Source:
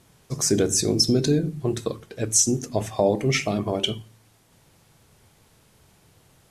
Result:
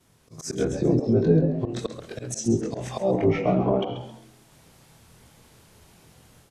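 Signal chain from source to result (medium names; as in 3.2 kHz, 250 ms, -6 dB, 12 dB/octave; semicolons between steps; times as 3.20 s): short-time spectra conjugated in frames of 51 ms; slow attack 202 ms; level rider gain up to 8 dB; low-pass that closes with the level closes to 1.1 kHz, closed at -15.5 dBFS; frequency-shifting echo 134 ms, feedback 30%, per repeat +99 Hz, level -10.5 dB; trim -1.5 dB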